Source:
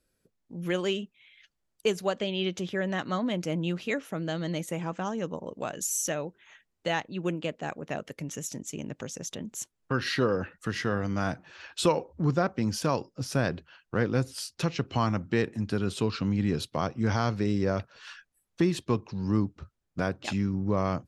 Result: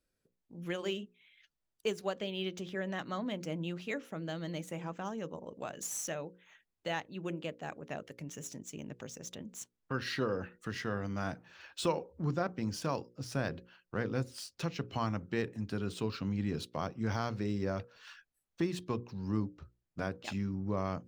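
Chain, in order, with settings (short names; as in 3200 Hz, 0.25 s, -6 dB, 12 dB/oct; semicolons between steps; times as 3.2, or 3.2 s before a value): median filter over 3 samples; notches 60/120/180/240/300/360/420/480/540 Hz; gain -7 dB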